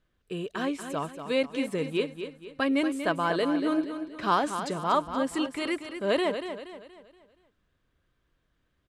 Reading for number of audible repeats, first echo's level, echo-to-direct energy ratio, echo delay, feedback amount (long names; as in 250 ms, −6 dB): 4, −9.0 dB, −8.0 dB, 237 ms, 41%